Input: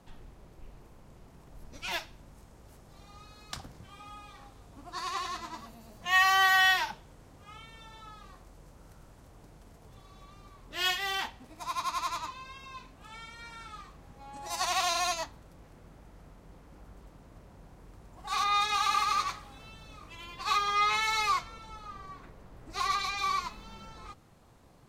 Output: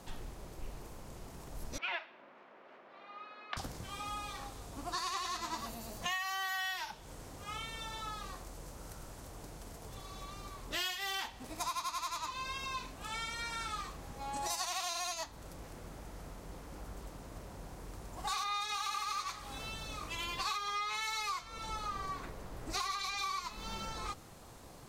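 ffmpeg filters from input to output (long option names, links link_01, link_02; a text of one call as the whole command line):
ffmpeg -i in.wav -filter_complex "[0:a]asettb=1/sr,asplit=3[link_01][link_02][link_03];[link_01]atrim=end=1.784[link_04];[link_02]atrim=start=1.78:end=3.57,asetpts=PTS-STARTPTS,afade=type=in:duration=0.004:curve=qsin,afade=type=out:start_time=1.786:duration=0.004:curve=qsin,highpass=frequency=300:width=0.5412,highpass=frequency=300:width=1.3066,equalizer=frequency=310:width_type=q:width=4:gain=-8,equalizer=frequency=460:width_type=q:width=4:gain=-7,equalizer=frequency=830:width_type=q:width=4:gain=-5,lowpass=frequency=2600:width=0.5412,lowpass=frequency=2600:width=1.3066[link_05];[link_03]atrim=start=3.566[link_06];[link_04][link_05]acrossfade=duration=0.004:curve1=hsin:curve2=qsin[link_07];[link_07][link_06]acrossfade=duration=0.004:curve1=qsin:curve2=hsin,bass=frequency=250:gain=-7,treble=frequency=4000:gain=6,acompressor=threshold=-41dB:ratio=12,lowshelf=frequency=140:gain=6,volume=6.5dB" out.wav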